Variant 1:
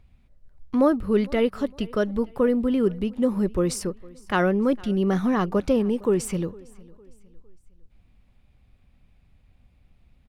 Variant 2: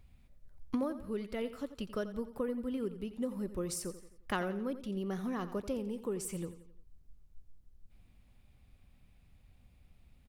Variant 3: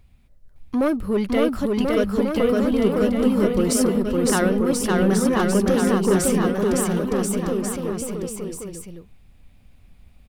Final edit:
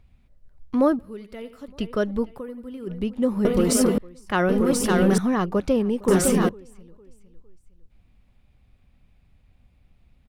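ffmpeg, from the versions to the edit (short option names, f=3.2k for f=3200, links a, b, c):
-filter_complex "[1:a]asplit=2[a][b];[2:a]asplit=3[c][d][e];[0:a]asplit=6[f][g][h][i][j][k];[f]atrim=end=0.992[l];[a]atrim=start=0.988:end=1.682[m];[g]atrim=start=1.678:end=2.4[n];[b]atrim=start=2.34:end=2.92[o];[h]atrim=start=2.86:end=3.452[p];[c]atrim=start=3.448:end=3.982[q];[i]atrim=start=3.978:end=4.492[r];[d]atrim=start=4.488:end=5.182[s];[j]atrim=start=5.178:end=6.082[t];[e]atrim=start=6.078:end=6.492[u];[k]atrim=start=6.488[v];[l][m]acrossfade=d=0.004:c1=hsin:c2=hsin[w];[w][n]acrossfade=d=0.004:c1=hsin:c2=hsin[x];[x][o]acrossfade=d=0.06:c1=tri:c2=tri[y];[y][p]acrossfade=d=0.06:c1=tri:c2=tri[z];[z][q]acrossfade=d=0.004:c1=hsin:c2=hsin[aa];[aa][r]acrossfade=d=0.004:c1=hsin:c2=hsin[ab];[ab][s]acrossfade=d=0.004:c1=hsin:c2=hsin[ac];[ac][t]acrossfade=d=0.004:c1=hsin:c2=hsin[ad];[ad][u]acrossfade=d=0.004:c1=hsin:c2=hsin[ae];[ae][v]acrossfade=d=0.004:c1=hsin:c2=hsin"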